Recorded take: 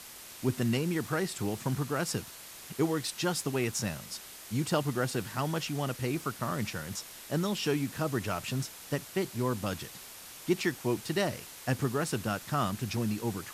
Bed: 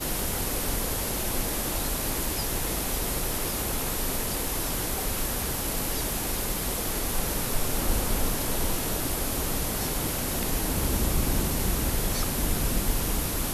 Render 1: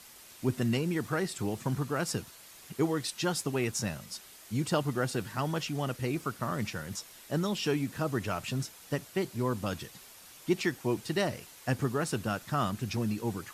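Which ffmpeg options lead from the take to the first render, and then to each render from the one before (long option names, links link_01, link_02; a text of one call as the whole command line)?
ffmpeg -i in.wav -af "afftdn=noise_reduction=6:noise_floor=-48" out.wav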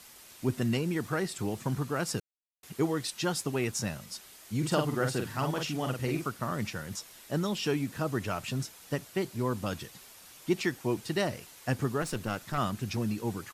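ffmpeg -i in.wav -filter_complex "[0:a]asplit=3[link_01][link_02][link_03];[link_01]afade=type=out:start_time=4.62:duration=0.02[link_04];[link_02]asplit=2[link_05][link_06];[link_06]adelay=46,volume=-4.5dB[link_07];[link_05][link_07]amix=inputs=2:normalize=0,afade=type=in:start_time=4.62:duration=0.02,afade=type=out:start_time=6.28:duration=0.02[link_08];[link_03]afade=type=in:start_time=6.28:duration=0.02[link_09];[link_04][link_08][link_09]amix=inputs=3:normalize=0,asettb=1/sr,asplit=3[link_10][link_11][link_12];[link_10]atrim=end=12.024[link_13];[link_11]atrim=start=12.02:end=12.58,asetpts=PTS-STARTPTS,afade=type=in:duration=0.004:curve=qsin,afade=type=out:start_time=0.556:duration=0.004:curve=qsin,aeval=exprs='clip(val(0),-1,0.0133)':channel_layout=same[link_14];[link_12]atrim=start=12.576[link_15];[link_13][link_14]acrossfade=duration=0.004:curve1=hsin:curve2=qsin[link_16];[link_16][link_15]acrossfade=duration=0.004:curve1=qsin:curve2=hsin,asplit=3[link_17][link_18][link_19];[link_17]atrim=end=2.2,asetpts=PTS-STARTPTS,afade=type=out:start_time=2.196:duration=0.004:curve=hsin[link_20];[link_18]atrim=start=2.2:end=2.63,asetpts=PTS-STARTPTS,volume=0[link_21];[link_19]atrim=start=2.63,asetpts=PTS-STARTPTS,afade=type=in:duration=0.004:curve=hsin[link_22];[link_20][link_21][link_22]concat=n=3:v=0:a=1" out.wav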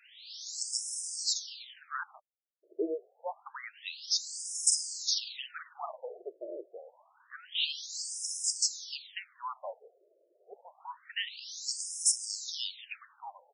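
ffmpeg -i in.wav -af "aexciter=amount=3.1:drive=9.1:freq=3200,afftfilt=real='re*between(b*sr/1024,460*pow(7200/460,0.5+0.5*sin(2*PI*0.27*pts/sr))/1.41,460*pow(7200/460,0.5+0.5*sin(2*PI*0.27*pts/sr))*1.41)':imag='im*between(b*sr/1024,460*pow(7200/460,0.5+0.5*sin(2*PI*0.27*pts/sr))/1.41,460*pow(7200/460,0.5+0.5*sin(2*PI*0.27*pts/sr))*1.41)':win_size=1024:overlap=0.75" out.wav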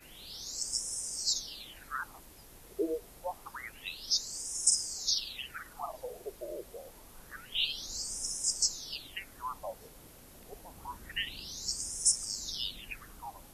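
ffmpeg -i in.wav -i bed.wav -filter_complex "[1:a]volume=-25.5dB[link_01];[0:a][link_01]amix=inputs=2:normalize=0" out.wav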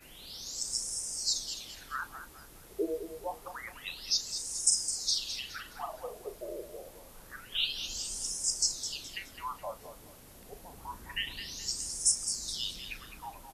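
ffmpeg -i in.wav -filter_complex "[0:a]asplit=2[link_01][link_02];[link_02]adelay=35,volume=-12.5dB[link_03];[link_01][link_03]amix=inputs=2:normalize=0,aecho=1:1:210|420|630:0.316|0.098|0.0304" out.wav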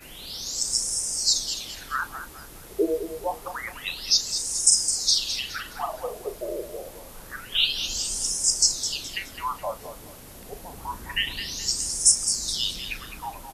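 ffmpeg -i in.wav -af "volume=9dB,alimiter=limit=-3dB:level=0:latency=1" out.wav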